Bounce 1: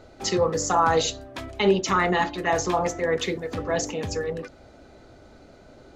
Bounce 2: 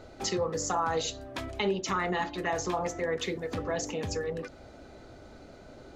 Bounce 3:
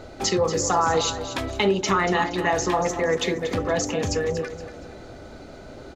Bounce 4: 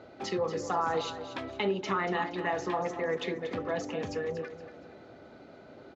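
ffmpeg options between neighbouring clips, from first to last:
-af "acompressor=threshold=-33dB:ratio=2"
-af "aecho=1:1:235|470|705|940:0.266|0.0958|0.0345|0.0124,volume=8dB"
-af "highpass=140,lowpass=3.5k,volume=-8.5dB"

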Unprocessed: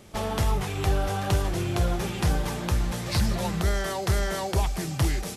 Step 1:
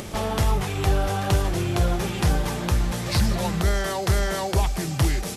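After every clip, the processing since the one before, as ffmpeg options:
-af "acompressor=mode=upward:threshold=-28dB:ratio=2.5,volume=3dB"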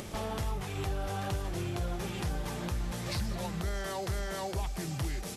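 -af "alimiter=limit=-18dB:level=0:latency=1:release=355,volume=-7dB"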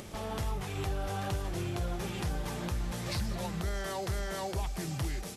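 -af "dynaudnorm=f=180:g=3:m=3.5dB,volume=-3.5dB"

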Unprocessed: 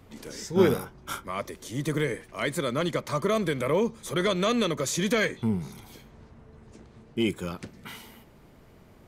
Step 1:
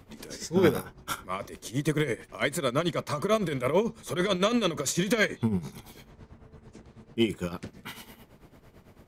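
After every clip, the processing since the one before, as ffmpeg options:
-af "tremolo=f=9:d=0.72,volume=3dB"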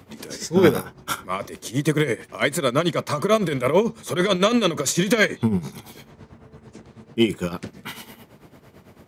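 -af "highpass=91,volume=6.5dB"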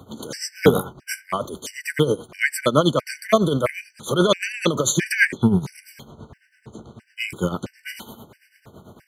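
-af "afftfilt=real='re*gt(sin(2*PI*1.5*pts/sr)*(1-2*mod(floor(b*sr/1024/1500),2)),0)':imag='im*gt(sin(2*PI*1.5*pts/sr)*(1-2*mod(floor(b*sr/1024/1500),2)),0)':win_size=1024:overlap=0.75,volume=4dB"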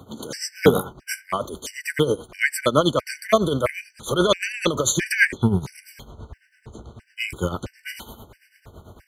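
-af "asubboost=boost=8.5:cutoff=57"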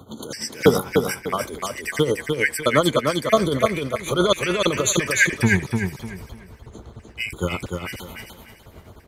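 -af "aecho=1:1:299|598|897|1196:0.596|0.173|0.0501|0.0145"

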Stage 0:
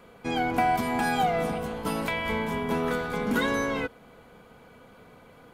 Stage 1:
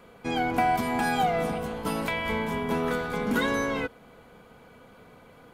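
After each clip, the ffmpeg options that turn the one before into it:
-af anull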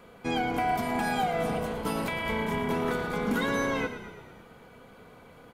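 -filter_complex "[0:a]alimiter=limit=-19dB:level=0:latency=1:release=305,asplit=8[a][b][c][d][e][f][g][h];[b]adelay=112,afreqshift=-32,volume=-11dB[i];[c]adelay=224,afreqshift=-64,volume=-15.6dB[j];[d]adelay=336,afreqshift=-96,volume=-20.2dB[k];[e]adelay=448,afreqshift=-128,volume=-24.7dB[l];[f]adelay=560,afreqshift=-160,volume=-29.3dB[m];[g]adelay=672,afreqshift=-192,volume=-33.9dB[n];[h]adelay=784,afreqshift=-224,volume=-38.5dB[o];[a][i][j][k][l][m][n][o]amix=inputs=8:normalize=0"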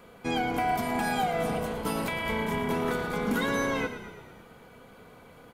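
-af "highshelf=f=6.9k:g=4"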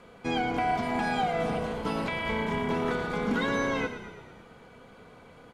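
-filter_complex "[0:a]acrossover=split=5700[a][b];[b]acompressor=threshold=-51dB:ratio=4:attack=1:release=60[c];[a][c]amix=inputs=2:normalize=0,lowpass=7.7k"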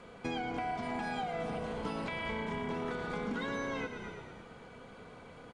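-af "acompressor=threshold=-35dB:ratio=4,aresample=22050,aresample=44100"

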